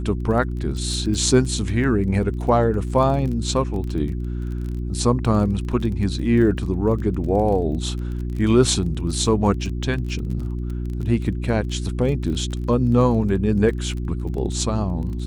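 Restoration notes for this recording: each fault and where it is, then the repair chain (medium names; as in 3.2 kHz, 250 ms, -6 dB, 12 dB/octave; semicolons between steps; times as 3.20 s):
crackle 21 per s -29 dBFS
hum 60 Hz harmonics 6 -26 dBFS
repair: de-click; de-hum 60 Hz, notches 6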